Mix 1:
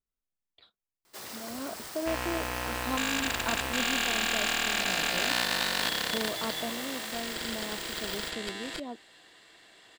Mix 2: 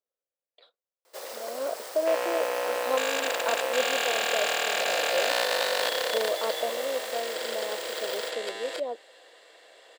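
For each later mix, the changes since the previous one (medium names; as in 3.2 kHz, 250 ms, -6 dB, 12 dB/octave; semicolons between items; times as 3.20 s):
master: add resonant high-pass 520 Hz, resonance Q 5.6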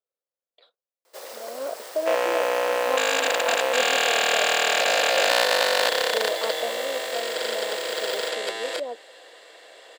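second sound +6.0 dB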